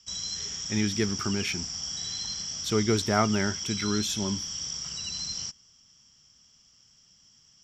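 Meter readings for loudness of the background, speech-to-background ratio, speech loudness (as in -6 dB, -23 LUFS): -32.0 LUFS, 3.0 dB, -29.0 LUFS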